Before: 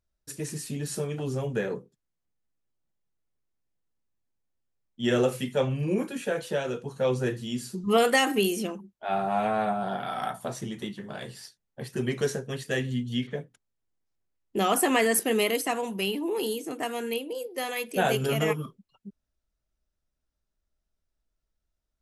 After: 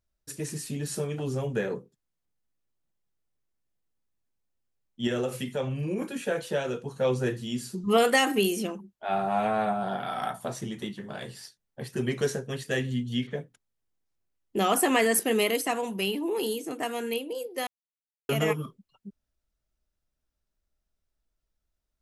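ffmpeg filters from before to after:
-filter_complex "[0:a]asettb=1/sr,asplit=3[s0][s1][s2];[s0]atrim=end=5.074[s3];[s1]atrim=start=5.07:end=6.02,asetpts=PTS-STARTPTS,afade=t=in:d=0.004:c=qsin,afade=t=out:st=0.946:d=0.004:c=qsin,acompressor=threshold=0.0355:ratio=2:attack=3.2:release=140:knee=1:detection=peak[s4];[s2]atrim=start=6.016[s5];[s3][s4]acrossfade=d=0.004:c1=hsin:c2=qsin[s6];[s6][s5]acrossfade=d=0.004:c1=qsin:c2=hsin,asplit=3[s7][s8][s9];[s7]atrim=end=17.67,asetpts=PTS-STARTPTS,afade=t=out:st=17.666:d=0.004:c=hsin[s10];[s8]atrim=start=17.67:end=18.29,asetpts=PTS-STARTPTS,volume=0[s11];[s9]atrim=start=18.29,asetpts=PTS-STARTPTS,afade=t=in:d=0.004:c=hsin[s12];[s10][s11][s12]concat=n=3:v=0:a=1"

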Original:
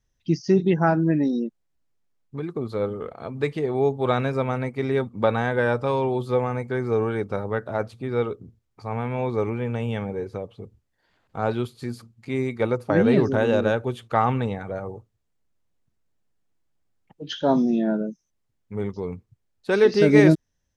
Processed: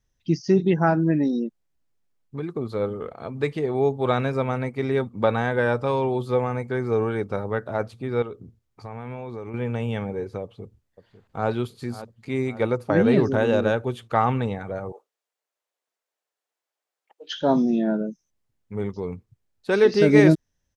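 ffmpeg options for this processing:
-filter_complex "[0:a]asettb=1/sr,asplit=3[s0][s1][s2];[s0]atrim=end=8.224[s3];[s1]atrim=start=8.22:end=9.54,asetpts=PTS-STARTPTS,afade=t=in:d=0.004:c=qsin,afade=t=out:st=1.316:d=0.004:c=qsin,acompressor=threshold=0.0282:ratio=6:attack=3.2:release=140:knee=1:detection=peak[s4];[s2]atrim=start=9.536[s5];[s3][s4]acrossfade=d=0.004:c1=hsin:c2=qsin[s6];[s6][s5]acrossfade=d=0.004:c1=qsin:c2=hsin,asplit=2[s7][s8];[s8]afade=t=in:st=10.42:d=0.01,afade=t=out:st=11.49:d=0.01,aecho=0:1:550|1100|1650|2200|2750|3300:0.199526|0.109739|0.0603567|0.0331962|0.0182579|0.0100418[s9];[s7][s9]amix=inputs=2:normalize=0,asettb=1/sr,asplit=3[s10][s11][s12];[s10]atrim=end=14.924[s13];[s11]atrim=start=14.92:end=17.35,asetpts=PTS-STARTPTS,afade=t=in:d=0.004:c=qsin,afade=t=out:st=2.426:d=0.004:c=qsin,highpass=f=480:w=0.5412,highpass=f=480:w=1.3066[s14];[s12]atrim=start=17.346[s15];[s13][s14]acrossfade=d=0.004:c1=hsin:c2=qsin[s16];[s16][s15]acrossfade=d=0.004:c1=qsin:c2=hsin"

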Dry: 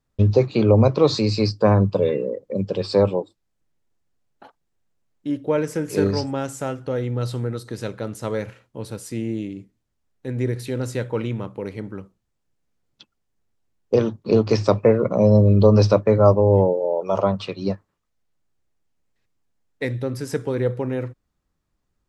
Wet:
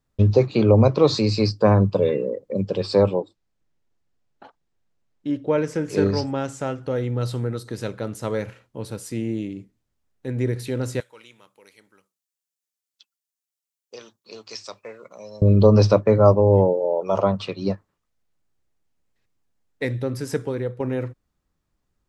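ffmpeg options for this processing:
-filter_complex "[0:a]asettb=1/sr,asplit=3[s0][s1][s2];[s0]atrim=end=3.094[s3];[s1]atrim=start=3.09:end=6.83,asetpts=PTS-STARTPTS,afade=t=in:d=0.004:c=qsin,afade=t=out:st=3.736:d=0.004:c=qsin,lowpass=6900[s4];[s2]atrim=start=6.826[s5];[s3][s4]acrossfade=d=0.004:c1=hsin:c2=qsin[s6];[s6][s5]acrossfade=d=0.004:c1=qsin:c2=hsin,asettb=1/sr,asplit=3[s7][s8][s9];[s7]atrim=end=11.004[s10];[s8]atrim=start=11:end=15.42,asetpts=PTS-STARTPTS,afade=t=in:d=0.004:c=qsin,afade=t=out:st=4.416:d=0.004:c=qsin,aderivative[s11];[s9]atrim=start=15.416[s12];[s10][s11]acrossfade=d=0.004:c1=hsin:c2=qsin[s13];[s13][s12]acrossfade=d=0.004:c1=qsin:c2=hsin,asplit=2[s14][s15];[s14]atrim=end=20.8,asetpts=PTS-STARTPTS,afade=t=out:st=20.36:d=0.44:silence=0.298538[s16];[s15]atrim=start=20.8,asetpts=PTS-STARTPTS,afade=t=in:d=0.004:c=hsin:silence=0.298538[s17];[s16][s17]concat=n=2:v=0:a=1"

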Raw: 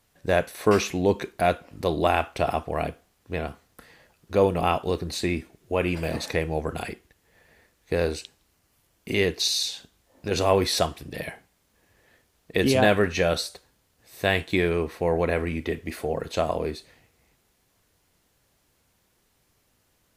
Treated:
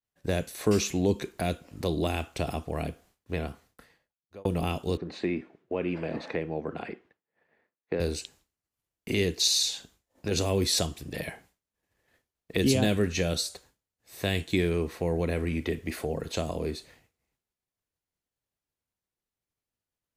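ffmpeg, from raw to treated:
-filter_complex "[0:a]asettb=1/sr,asplit=3[s0][s1][s2];[s0]atrim=end=4.974[s3];[s1]atrim=start=4.97:end=8,asetpts=PTS-STARTPTS,afade=t=in:d=0.004:c=qsin,afade=t=out:st=3.026:d=0.004:c=qsin,highpass=200,lowpass=2100[s4];[s2]atrim=start=7.996[s5];[s3][s4]acrossfade=d=0.004:c1=hsin:c2=qsin[s6];[s6][s5]acrossfade=d=0.004:c1=qsin:c2=hsin,asplit=2[s7][s8];[s7]atrim=end=4.45,asetpts=PTS-STARTPTS,afade=t=out:st=3.43:d=1.02[s9];[s8]atrim=start=4.45,asetpts=PTS-STARTPTS,afade=t=in:d=0.004:c=hsin[s10];[s9][s10]concat=n=2:v=0:a=1,agate=range=0.0224:threshold=0.00251:ratio=3:detection=peak,adynamicequalizer=threshold=0.00251:dfrequency=7100:dqfactor=4:tfrequency=7100:tqfactor=4:attack=5:release=100:ratio=0.375:range=3:mode=boostabove:tftype=bell,acrossover=split=390|3000[s11][s12][s13];[s12]acompressor=threshold=0.0178:ratio=6[s14];[s11][s14][s13]amix=inputs=3:normalize=0"

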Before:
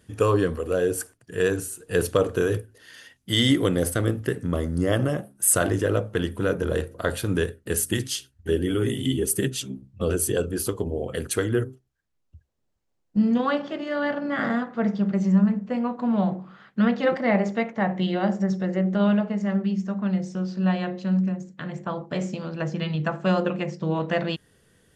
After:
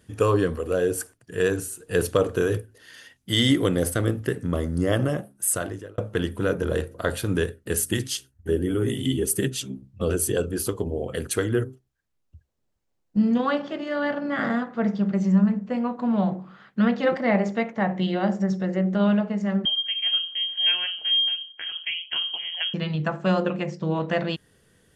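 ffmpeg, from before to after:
-filter_complex "[0:a]asettb=1/sr,asplit=3[s0][s1][s2];[s0]atrim=end=8.174[s3];[s1]atrim=start=8.17:end=8.88,asetpts=PTS-STARTPTS,afade=t=in:d=0.004:c=qsin,afade=t=out:st=0.706:d=0.004:c=qsin,equalizer=f=3400:t=o:w=1.8:g=-8[s4];[s2]atrim=start=8.876[s5];[s3][s4]acrossfade=d=0.004:c1=hsin:c2=qsin[s6];[s6][s5]acrossfade=d=0.004:c1=qsin:c2=hsin,asettb=1/sr,asplit=3[s7][s8][s9];[s7]atrim=end=19.654[s10];[s8]atrim=start=19.65:end=22.74,asetpts=PTS-STARTPTS,afade=t=in:d=0.004:c=qsin,afade=t=out:st=3.086:d=0.004:c=qsin,lowpass=f=2900:t=q:w=0.5098,lowpass=f=2900:t=q:w=0.6013,lowpass=f=2900:t=q:w=0.9,lowpass=f=2900:t=q:w=2.563,afreqshift=-3400[s11];[s9]atrim=start=22.736[s12];[s10][s11]acrossfade=d=0.004:c1=hsin:c2=qsin[s13];[s13][s12]acrossfade=d=0.004:c1=qsin:c2=hsin,asplit=2[s14][s15];[s14]atrim=end=5.98,asetpts=PTS-STARTPTS,afade=t=out:st=5.19:d=0.79[s16];[s15]atrim=start=5.98,asetpts=PTS-STARTPTS,afade=t=in:d=0.004:c=hsin[s17];[s16][s17]concat=n=2:v=0:a=1"

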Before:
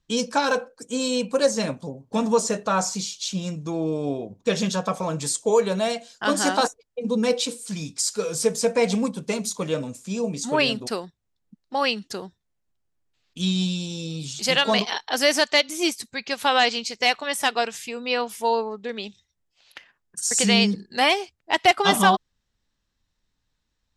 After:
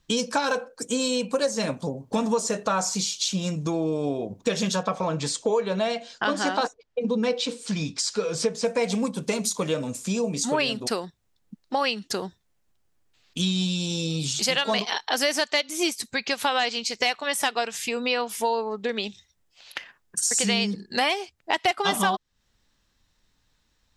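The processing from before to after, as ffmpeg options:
-filter_complex "[0:a]asettb=1/sr,asplit=3[s0][s1][s2];[s0]atrim=end=4.834[s3];[s1]atrim=start=4.83:end=8.65,asetpts=PTS-STARTPTS,afade=t=in:d=0.004:c=qsin,afade=t=out:st=3.816:d=0.004:c=qsin,lowpass=4500[s4];[s2]atrim=start=8.646[s5];[s3][s4]acrossfade=d=0.004:c1=hsin:c2=qsin[s6];[s6][s5]acrossfade=d=0.004:c1=qsin:c2=hsin,lowshelf=f=320:g=-3,acompressor=threshold=0.02:ratio=3,volume=2.82"

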